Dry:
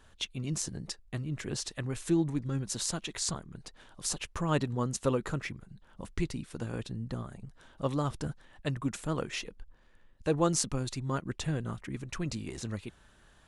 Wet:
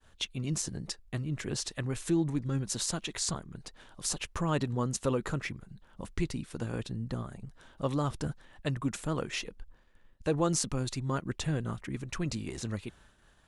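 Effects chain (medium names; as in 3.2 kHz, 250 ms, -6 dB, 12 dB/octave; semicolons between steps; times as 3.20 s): expander -55 dBFS; in parallel at +1.5 dB: peak limiter -22.5 dBFS, peak gain reduction 10.5 dB; on the sum: trim -5.5 dB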